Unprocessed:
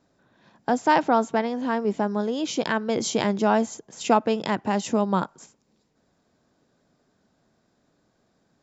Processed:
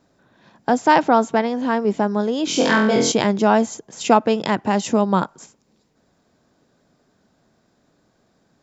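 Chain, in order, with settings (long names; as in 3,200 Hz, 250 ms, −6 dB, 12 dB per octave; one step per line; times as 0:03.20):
0:02.45–0:03.12: flutter between parallel walls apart 4 metres, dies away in 0.58 s
level +5 dB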